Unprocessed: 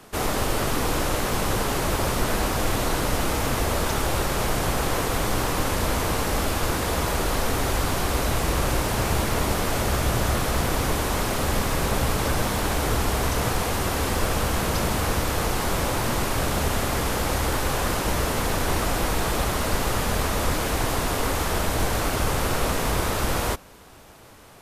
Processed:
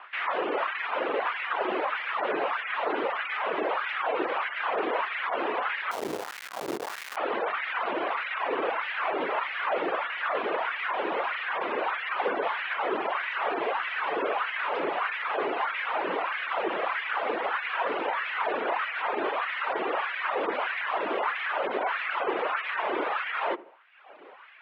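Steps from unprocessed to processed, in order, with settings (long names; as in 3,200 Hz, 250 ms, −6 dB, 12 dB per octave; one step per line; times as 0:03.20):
gate on every frequency bin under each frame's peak −30 dB strong
reverb reduction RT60 1.1 s
low-shelf EQ 310 Hz −11 dB
in parallel at 0 dB: brickwall limiter −27 dBFS, peak gain reduction 10 dB
on the sum: single-sideband voice off tune −50 Hz 190–3,000 Hz
0:05.91–0:07.17: comparator with hysteresis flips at −24 dBFS
on a send: feedback echo with a low-pass in the loop 78 ms, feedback 58%, low-pass 1,200 Hz, level −18.5 dB
on the sum: auto-filter high-pass sine 1.6 Hz 340–2,000 Hz
level −3 dB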